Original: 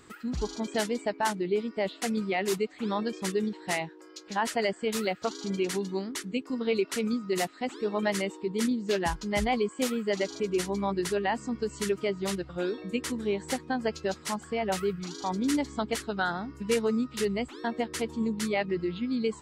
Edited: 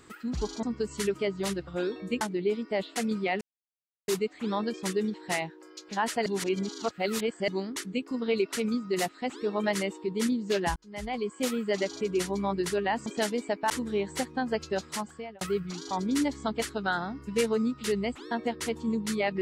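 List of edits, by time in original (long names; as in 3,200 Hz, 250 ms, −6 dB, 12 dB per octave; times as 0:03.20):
0:00.63–0:01.27: swap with 0:11.45–0:13.03
0:02.47: splice in silence 0.67 s
0:04.65–0:05.87: reverse
0:09.15–0:09.90: fade in
0:14.24–0:14.74: fade out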